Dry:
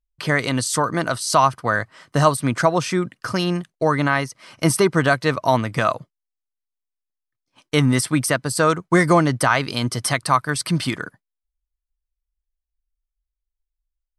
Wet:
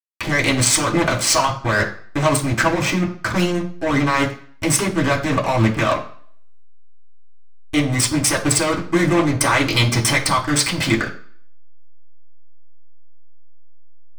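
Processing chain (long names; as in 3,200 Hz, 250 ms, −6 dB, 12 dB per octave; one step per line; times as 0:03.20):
in parallel at +3 dB: compressor whose output falls as the input rises −23 dBFS, ratio −0.5
on the sum: slack as between gear wheels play −9.5 dBFS
convolution reverb RT60 0.50 s, pre-delay 3 ms, DRR −5 dB
level −4.5 dB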